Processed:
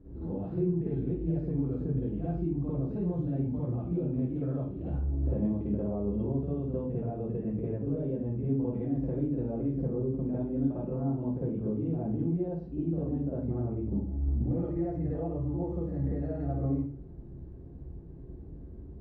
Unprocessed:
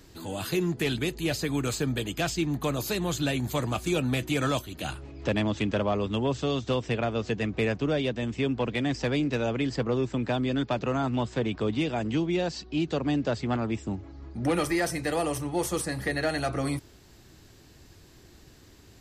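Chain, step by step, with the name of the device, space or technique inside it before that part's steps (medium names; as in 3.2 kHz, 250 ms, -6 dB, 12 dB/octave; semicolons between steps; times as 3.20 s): television next door (compression 4:1, threshold -36 dBFS, peak gain reduction 12.5 dB; low-pass 350 Hz 12 dB/octave; reverberation RT60 0.45 s, pre-delay 47 ms, DRR -8 dB)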